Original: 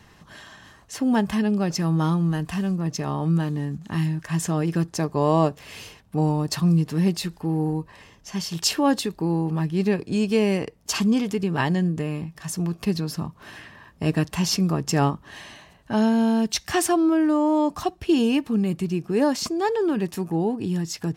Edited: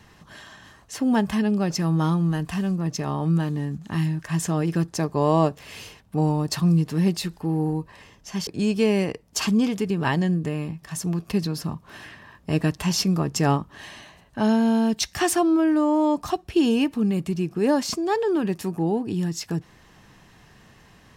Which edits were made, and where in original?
8.47–10.00 s: delete

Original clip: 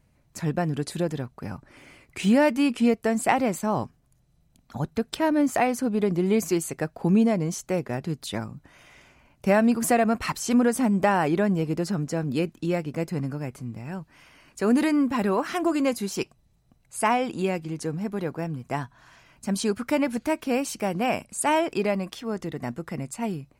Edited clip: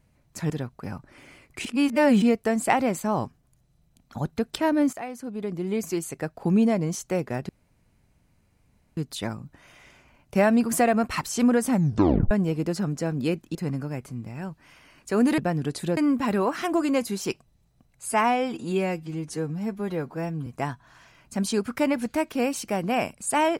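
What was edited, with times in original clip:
0.50–1.09 s: move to 14.88 s
2.24–2.81 s: reverse
5.52–7.32 s: fade in, from -14.5 dB
8.08 s: insert room tone 1.48 s
10.83 s: tape stop 0.59 s
12.66–13.05 s: delete
16.99–18.58 s: stretch 1.5×

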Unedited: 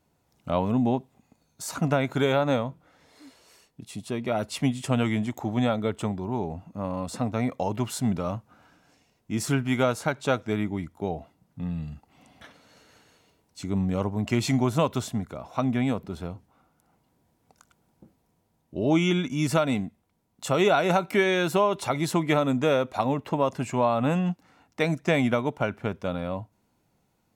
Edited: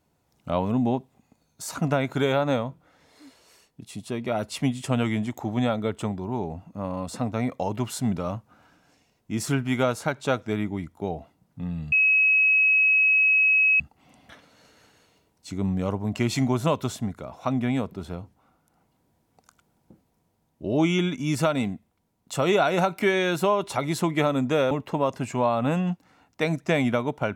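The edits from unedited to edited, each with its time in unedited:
11.92 s: add tone 2.56 kHz -16 dBFS 1.88 s
22.83–23.10 s: delete

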